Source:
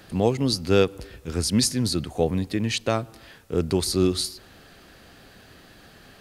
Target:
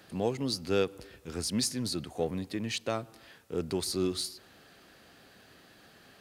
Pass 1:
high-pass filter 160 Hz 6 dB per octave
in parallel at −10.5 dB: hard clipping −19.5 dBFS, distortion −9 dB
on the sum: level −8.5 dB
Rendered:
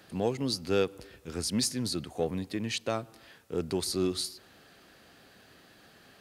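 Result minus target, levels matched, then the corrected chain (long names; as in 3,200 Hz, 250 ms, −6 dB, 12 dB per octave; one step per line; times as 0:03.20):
hard clipping: distortion −7 dB
high-pass filter 160 Hz 6 dB per octave
in parallel at −10.5 dB: hard clipping −30 dBFS, distortion −3 dB
on the sum: level −8.5 dB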